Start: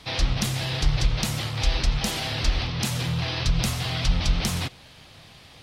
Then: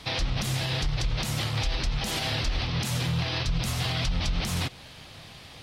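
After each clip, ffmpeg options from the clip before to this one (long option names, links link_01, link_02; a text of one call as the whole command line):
ffmpeg -i in.wav -af "alimiter=limit=-21dB:level=0:latency=1:release=133,volume=2.5dB" out.wav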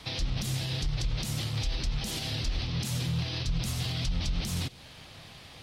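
ffmpeg -i in.wav -filter_complex "[0:a]acrossover=split=430|3000[link_01][link_02][link_03];[link_02]acompressor=threshold=-45dB:ratio=3[link_04];[link_01][link_04][link_03]amix=inputs=3:normalize=0,volume=-2.5dB" out.wav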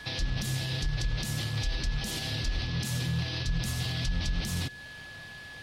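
ffmpeg -i in.wav -af "aeval=exprs='val(0)+0.00631*sin(2*PI*1700*n/s)':channel_layout=same" out.wav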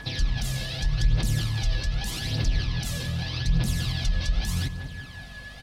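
ffmpeg -i in.wav -filter_complex "[0:a]aphaser=in_gain=1:out_gain=1:delay=1.9:decay=0.57:speed=0.83:type=triangular,asplit=2[link_01][link_02];[link_02]adelay=188,lowpass=frequency=1300:poles=1,volume=-8dB,asplit=2[link_03][link_04];[link_04]adelay=188,lowpass=frequency=1300:poles=1,volume=0.51,asplit=2[link_05][link_06];[link_06]adelay=188,lowpass=frequency=1300:poles=1,volume=0.51,asplit=2[link_07][link_08];[link_08]adelay=188,lowpass=frequency=1300:poles=1,volume=0.51,asplit=2[link_09][link_10];[link_10]adelay=188,lowpass=frequency=1300:poles=1,volume=0.51,asplit=2[link_11][link_12];[link_12]adelay=188,lowpass=frequency=1300:poles=1,volume=0.51[link_13];[link_01][link_03][link_05][link_07][link_09][link_11][link_13]amix=inputs=7:normalize=0,aeval=exprs='val(0)+0.00562*(sin(2*PI*50*n/s)+sin(2*PI*2*50*n/s)/2+sin(2*PI*3*50*n/s)/3+sin(2*PI*4*50*n/s)/4+sin(2*PI*5*50*n/s)/5)':channel_layout=same" out.wav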